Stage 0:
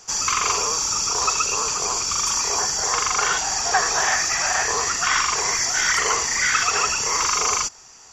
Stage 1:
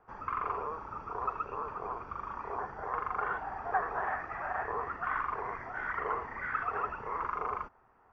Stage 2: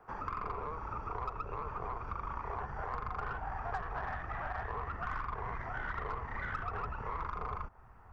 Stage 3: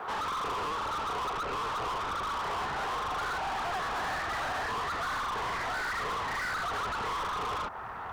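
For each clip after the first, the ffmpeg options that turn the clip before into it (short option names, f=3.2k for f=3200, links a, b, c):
-af "lowpass=f=1.5k:w=0.5412,lowpass=f=1.5k:w=1.3066,equalizer=f=160:t=o:w=0.3:g=-3.5,volume=-9dB"
-filter_complex "[0:a]asubboost=boost=6.5:cutoff=130,aeval=exprs='0.133*(cos(1*acos(clip(val(0)/0.133,-1,1)))-cos(1*PI/2))+0.00473*(cos(8*acos(clip(val(0)/0.133,-1,1)))-cos(8*PI/2))':c=same,acrossover=split=250|840[a][b][c];[a]acompressor=threshold=-46dB:ratio=4[d];[b]acompressor=threshold=-50dB:ratio=4[e];[c]acompressor=threshold=-47dB:ratio=4[f];[d][e][f]amix=inputs=3:normalize=0,volume=5dB"
-filter_complex "[0:a]asplit=2[a][b];[b]highpass=f=720:p=1,volume=35dB,asoftclip=type=tanh:threshold=-23dB[c];[a][c]amix=inputs=2:normalize=0,lowpass=f=3.8k:p=1,volume=-6dB,volume=-3.5dB"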